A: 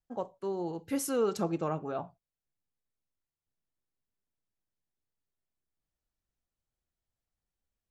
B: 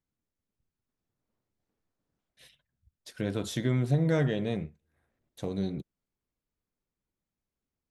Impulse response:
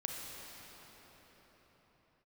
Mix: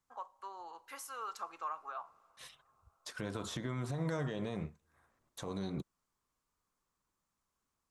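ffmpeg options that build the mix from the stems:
-filter_complex "[0:a]highpass=1200,acompressor=threshold=-47dB:ratio=2,volume=-5dB,asplit=2[link_01][link_02];[link_02]volume=-21.5dB[link_03];[1:a]equalizer=frequency=7200:width=0.85:gain=9,acrossover=split=750|3400[link_04][link_05][link_06];[link_04]acompressor=threshold=-28dB:ratio=4[link_07];[link_05]acompressor=threshold=-44dB:ratio=4[link_08];[link_06]acompressor=threshold=-48dB:ratio=4[link_09];[link_07][link_08][link_09]amix=inputs=3:normalize=0,volume=-1dB[link_10];[2:a]atrim=start_sample=2205[link_11];[link_03][link_11]afir=irnorm=-1:irlink=0[link_12];[link_01][link_10][link_12]amix=inputs=3:normalize=0,equalizer=frequency=1100:width_type=o:width=0.88:gain=15,alimiter=level_in=4.5dB:limit=-24dB:level=0:latency=1:release=164,volume=-4.5dB"

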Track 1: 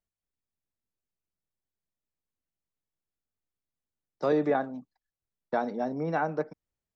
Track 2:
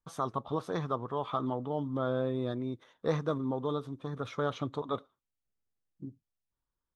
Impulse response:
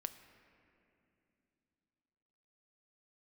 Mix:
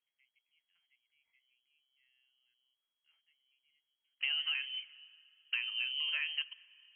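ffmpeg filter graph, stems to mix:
-filter_complex "[0:a]volume=-1.5dB,asplit=3[link_01][link_02][link_03];[link_02]volume=-12.5dB[link_04];[1:a]equalizer=frequency=250:width_type=o:width=2.7:gain=-7.5,volume=-11dB[link_05];[link_03]apad=whole_len=306603[link_06];[link_05][link_06]sidechaingate=range=-29dB:threshold=-51dB:ratio=16:detection=peak[link_07];[2:a]atrim=start_sample=2205[link_08];[link_04][link_08]afir=irnorm=-1:irlink=0[link_09];[link_01][link_07][link_09]amix=inputs=3:normalize=0,lowpass=frequency=2800:width_type=q:width=0.5098,lowpass=frequency=2800:width_type=q:width=0.6013,lowpass=frequency=2800:width_type=q:width=0.9,lowpass=frequency=2800:width_type=q:width=2.563,afreqshift=-3300,acompressor=threshold=-33dB:ratio=5"

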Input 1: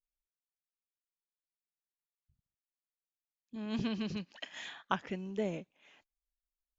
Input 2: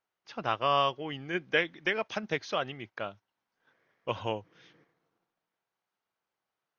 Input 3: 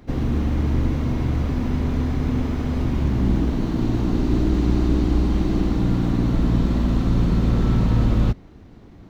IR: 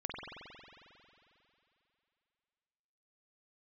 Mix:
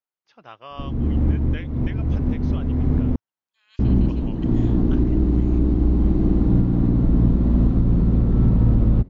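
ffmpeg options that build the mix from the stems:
-filter_complex "[0:a]highpass=frequency=1400:width=0.5412,highpass=frequency=1400:width=1.3066,volume=-7.5dB[link_01];[1:a]volume=-12dB,asplit=2[link_02][link_03];[2:a]tiltshelf=frequency=890:gain=8,alimiter=limit=-5dB:level=0:latency=1:release=404,highshelf=frequency=4700:gain=-9,adelay=700,volume=-3dB,asplit=3[link_04][link_05][link_06];[link_04]atrim=end=3.16,asetpts=PTS-STARTPTS,afade=type=out:start_time=3.156:duration=0.004:curve=hsin[link_07];[link_05]atrim=start=3.16:end=3.79,asetpts=PTS-STARTPTS,volume=0[link_08];[link_06]atrim=start=3.79,asetpts=PTS-STARTPTS,afade=type=in:duration=0.004:curve=hsin[link_09];[link_07][link_08][link_09]concat=n=3:v=0:a=1[link_10];[link_03]apad=whole_len=432034[link_11];[link_10][link_11]sidechaincompress=threshold=-44dB:ratio=8:attack=28:release=372[link_12];[link_01][link_02][link_12]amix=inputs=3:normalize=0"

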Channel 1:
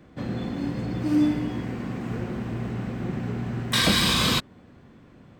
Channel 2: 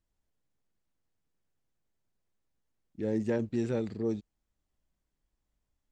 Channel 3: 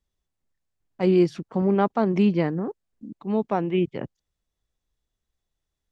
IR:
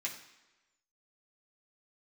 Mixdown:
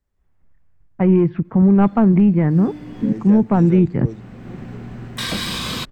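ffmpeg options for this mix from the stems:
-filter_complex "[0:a]adelay=1450,volume=-17.5dB[link_01];[1:a]volume=-1dB[link_02];[2:a]lowpass=frequency=2100:width=0.5412,lowpass=frequency=2100:width=1.3066,acontrast=86,asubboost=boost=10:cutoff=190,volume=-4.5dB,asplit=2[link_03][link_04];[link_04]volume=-16.5dB[link_05];[link_01][link_03]amix=inputs=2:normalize=0,dynaudnorm=framelen=150:gausssize=3:maxgain=14dB,alimiter=limit=-7dB:level=0:latency=1:release=244,volume=0dB[link_06];[3:a]atrim=start_sample=2205[link_07];[link_05][link_07]afir=irnorm=-1:irlink=0[link_08];[link_02][link_06][link_08]amix=inputs=3:normalize=0"

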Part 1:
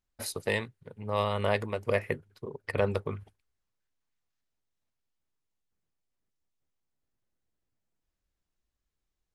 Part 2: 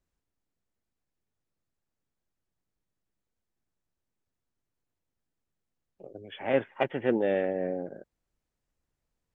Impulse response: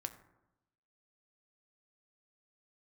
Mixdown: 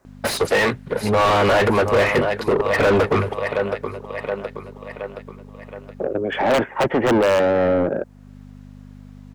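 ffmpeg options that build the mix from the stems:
-filter_complex "[0:a]aeval=exprs='val(0)+0.00141*(sin(2*PI*50*n/s)+sin(2*PI*2*50*n/s)/2+sin(2*PI*3*50*n/s)/3+sin(2*PI*4*50*n/s)/4+sin(2*PI*5*50*n/s)/5)':channel_layout=same,adelay=50,volume=3dB,asplit=2[link_01][link_02];[link_02]volume=-20dB[link_03];[1:a]equalizer=frequency=3200:width_type=o:width=1.2:gain=-13.5,aeval=exprs='(mod(7.5*val(0)+1,2)-1)/7.5':channel_layout=same,acrossover=split=310|3000[link_04][link_05][link_06];[link_05]acompressor=threshold=-52dB:ratio=1.5[link_07];[link_04][link_07][link_06]amix=inputs=3:normalize=0,volume=1.5dB,asplit=2[link_08][link_09];[link_09]apad=whole_len=414410[link_10];[link_01][link_10]sidechaincompress=threshold=-48dB:ratio=8:attack=16:release=441[link_11];[link_03]aecho=0:1:721|1442|2163|2884|3605|4326:1|0.46|0.212|0.0973|0.0448|0.0206[link_12];[link_11][link_08][link_12]amix=inputs=3:normalize=0,asplit=2[link_13][link_14];[link_14]highpass=frequency=720:poles=1,volume=38dB,asoftclip=type=tanh:threshold=-7.5dB[link_15];[link_13][link_15]amix=inputs=2:normalize=0,lowpass=frequency=1600:poles=1,volume=-6dB"

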